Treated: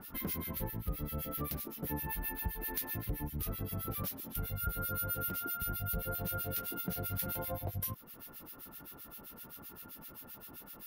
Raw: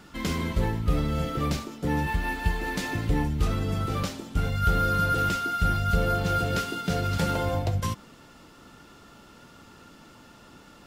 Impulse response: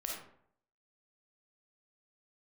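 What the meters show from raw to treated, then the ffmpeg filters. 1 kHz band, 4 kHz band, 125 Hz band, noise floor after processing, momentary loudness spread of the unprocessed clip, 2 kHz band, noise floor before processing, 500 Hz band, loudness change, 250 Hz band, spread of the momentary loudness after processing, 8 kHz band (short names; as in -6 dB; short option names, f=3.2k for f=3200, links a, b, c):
-15.0 dB, -13.5 dB, -13.5 dB, -54 dBFS, 6 LU, -15.0 dB, -52 dBFS, -13.5 dB, -11.0 dB, -13.0 dB, 12 LU, -4.0 dB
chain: -filter_complex "[0:a]aexciter=amount=11.9:drive=9.1:freq=11k,acrossover=split=1600[a][b];[a]aeval=exprs='val(0)*(1-1/2+1/2*cos(2*PI*7.7*n/s))':c=same[c];[b]aeval=exprs='val(0)*(1-1/2-1/2*cos(2*PI*7.7*n/s))':c=same[d];[c][d]amix=inputs=2:normalize=0,acompressor=threshold=-39dB:ratio=2.5"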